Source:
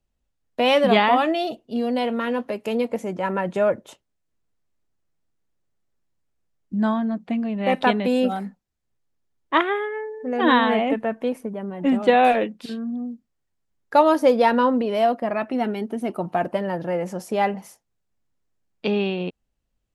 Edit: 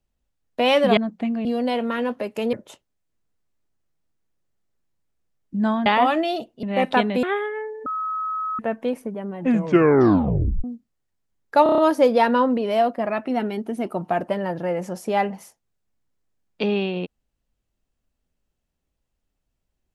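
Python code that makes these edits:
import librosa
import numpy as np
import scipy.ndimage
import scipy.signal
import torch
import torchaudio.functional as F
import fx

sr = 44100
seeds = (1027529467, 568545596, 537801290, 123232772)

y = fx.edit(x, sr, fx.swap(start_s=0.97, length_s=0.77, other_s=7.05, other_length_s=0.48),
    fx.cut(start_s=2.82, length_s=0.9),
    fx.cut(start_s=8.13, length_s=1.49),
    fx.bleep(start_s=10.25, length_s=0.73, hz=1280.0, db=-23.5),
    fx.tape_stop(start_s=11.78, length_s=1.25),
    fx.stutter(start_s=14.02, slice_s=0.03, count=6), tone=tone)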